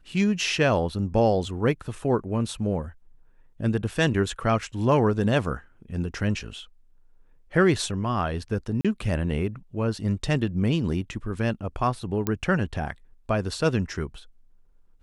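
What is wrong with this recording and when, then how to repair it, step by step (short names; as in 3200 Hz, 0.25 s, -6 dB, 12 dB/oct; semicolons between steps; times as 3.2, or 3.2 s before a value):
8.81–8.85 gap 36 ms
12.27 pop -11 dBFS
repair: de-click; interpolate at 8.81, 36 ms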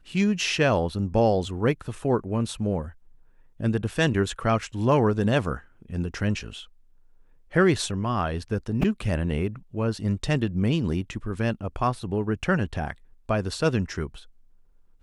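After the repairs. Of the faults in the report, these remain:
none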